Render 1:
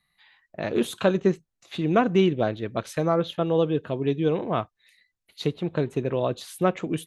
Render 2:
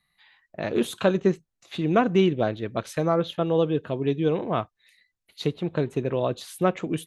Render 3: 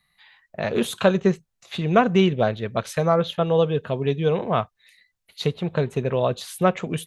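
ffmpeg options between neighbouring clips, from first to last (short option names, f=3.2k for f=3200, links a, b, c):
-af anull
-af "equalizer=f=310:w=4.3:g=-13.5,volume=4.5dB"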